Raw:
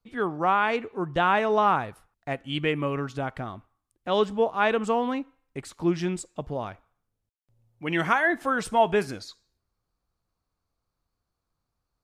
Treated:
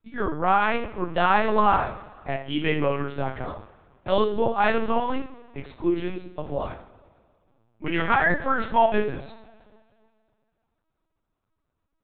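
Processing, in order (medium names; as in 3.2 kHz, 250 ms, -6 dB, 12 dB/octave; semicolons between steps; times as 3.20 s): two-slope reverb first 0.42 s, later 2.2 s, from -20 dB, DRR 1.5 dB; LPC vocoder at 8 kHz pitch kept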